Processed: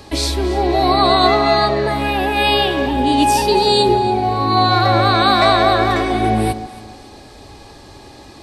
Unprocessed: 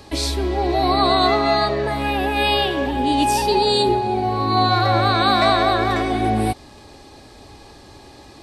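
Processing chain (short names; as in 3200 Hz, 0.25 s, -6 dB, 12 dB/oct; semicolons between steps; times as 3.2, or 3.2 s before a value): echo with dull and thin repeats by turns 0.139 s, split 960 Hz, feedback 54%, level -12 dB; gain +3.5 dB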